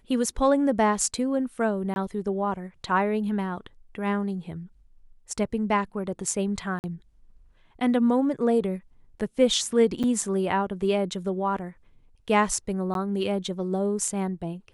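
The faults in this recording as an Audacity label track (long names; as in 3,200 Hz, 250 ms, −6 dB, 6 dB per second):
1.940000	1.960000	drop-out 21 ms
6.790000	6.840000	drop-out 49 ms
10.030000	10.040000	drop-out 7 ms
12.940000	12.950000	drop-out 12 ms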